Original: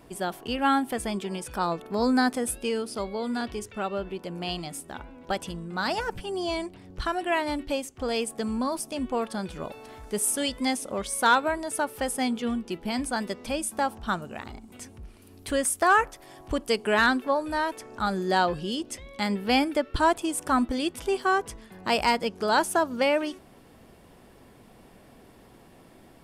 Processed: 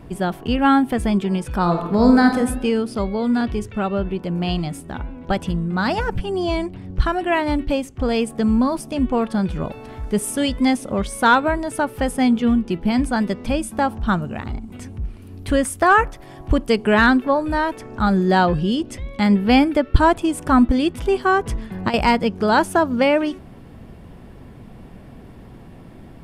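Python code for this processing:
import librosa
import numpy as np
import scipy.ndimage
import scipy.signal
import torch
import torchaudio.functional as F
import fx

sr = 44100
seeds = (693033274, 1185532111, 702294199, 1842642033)

y = fx.reverb_throw(x, sr, start_s=1.61, length_s=0.77, rt60_s=0.9, drr_db=4.0)
y = fx.over_compress(y, sr, threshold_db=-27.0, ratio=-0.5, at=(21.46, 21.94))
y = fx.bass_treble(y, sr, bass_db=11, treble_db=-8)
y = y * 10.0 ** (6.0 / 20.0)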